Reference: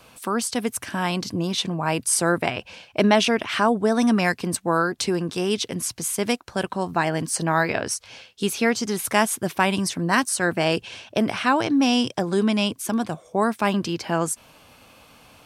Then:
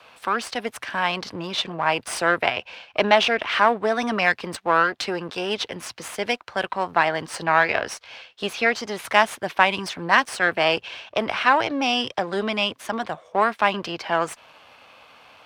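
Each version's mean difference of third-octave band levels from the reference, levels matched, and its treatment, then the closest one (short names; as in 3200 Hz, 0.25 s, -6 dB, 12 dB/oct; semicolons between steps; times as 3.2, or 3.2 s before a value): 5.5 dB: half-wave gain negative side -7 dB; HPF 51 Hz; three-band isolator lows -14 dB, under 500 Hz, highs -18 dB, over 4300 Hz; gain +6.5 dB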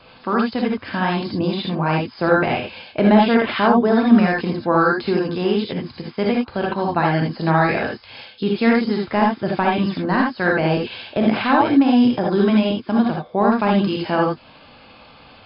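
8.5 dB: de-esser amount 85%; brick-wall FIR low-pass 5200 Hz; non-linear reverb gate 0.1 s rising, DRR -0.5 dB; gain +2.5 dB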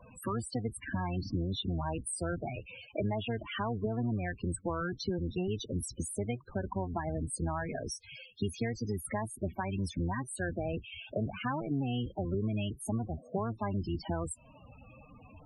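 14.0 dB: octaver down 1 oct, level +1 dB; compressor 8:1, threshold -30 dBFS, peak gain reduction 18 dB; loudest bins only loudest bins 16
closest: first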